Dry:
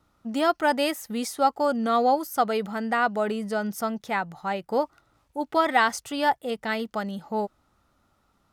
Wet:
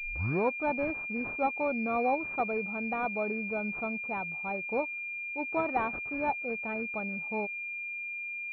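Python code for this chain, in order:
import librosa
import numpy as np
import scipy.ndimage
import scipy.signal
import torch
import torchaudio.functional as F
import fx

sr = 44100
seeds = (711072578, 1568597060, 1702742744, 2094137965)

y = fx.tape_start_head(x, sr, length_s=0.65)
y = fx.pwm(y, sr, carrier_hz=2400.0)
y = y * librosa.db_to_amplitude(-6.5)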